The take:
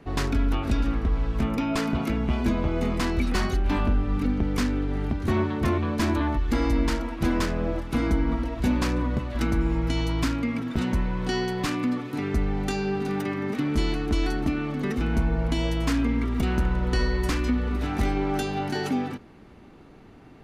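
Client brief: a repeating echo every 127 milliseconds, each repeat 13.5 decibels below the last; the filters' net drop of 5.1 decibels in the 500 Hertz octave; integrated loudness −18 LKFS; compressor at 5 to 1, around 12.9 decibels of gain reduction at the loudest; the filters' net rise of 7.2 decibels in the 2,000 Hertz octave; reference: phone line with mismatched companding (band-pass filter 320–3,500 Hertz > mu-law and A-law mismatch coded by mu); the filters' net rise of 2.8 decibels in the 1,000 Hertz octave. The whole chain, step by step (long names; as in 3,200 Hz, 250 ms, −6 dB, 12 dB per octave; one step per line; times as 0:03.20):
parametric band 500 Hz −6.5 dB
parametric band 1,000 Hz +3 dB
parametric band 2,000 Hz +9 dB
downward compressor 5 to 1, threshold −34 dBFS
band-pass filter 320–3,500 Hz
repeating echo 127 ms, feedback 21%, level −13.5 dB
mu-law and A-law mismatch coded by mu
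level +19.5 dB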